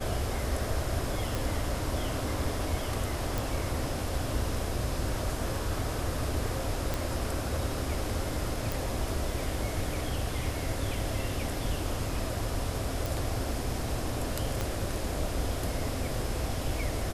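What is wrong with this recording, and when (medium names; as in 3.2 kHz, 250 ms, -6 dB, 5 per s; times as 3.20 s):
1.35 s: pop
3.38 s: pop
6.94 s: pop
8.72 s: pop
13.06 s: pop
14.61 s: pop -16 dBFS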